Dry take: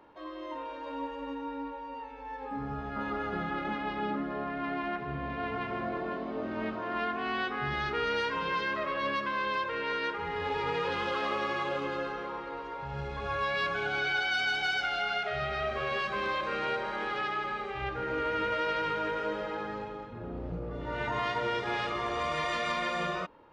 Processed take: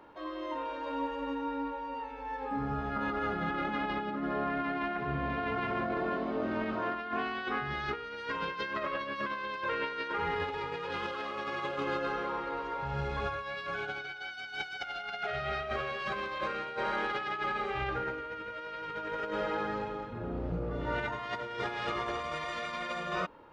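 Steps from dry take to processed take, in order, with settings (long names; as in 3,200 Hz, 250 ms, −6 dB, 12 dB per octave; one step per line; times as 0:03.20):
parametric band 1,400 Hz +3 dB 0.21 octaves
compressor whose output falls as the input rises −34 dBFS, ratio −0.5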